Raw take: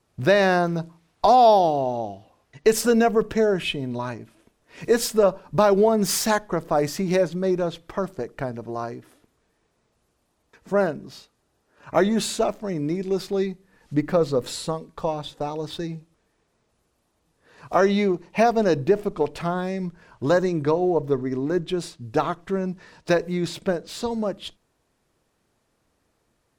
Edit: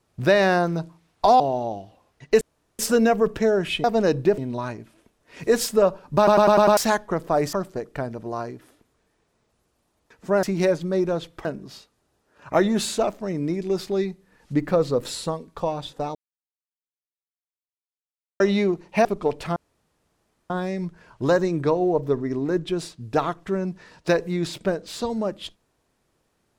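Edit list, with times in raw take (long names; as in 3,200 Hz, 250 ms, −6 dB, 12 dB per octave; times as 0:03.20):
0:01.40–0:01.73: remove
0:02.74: splice in room tone 0.38 s
0:05.58: stutter in place 0.10 s, 6 plays
0:06.94–0:07.96: move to 0:10.86
0:15.56–0:17.81: silence
0:18.46–0:19.00: move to 0:03.79
0:19.51: splice in room tone 0.94 s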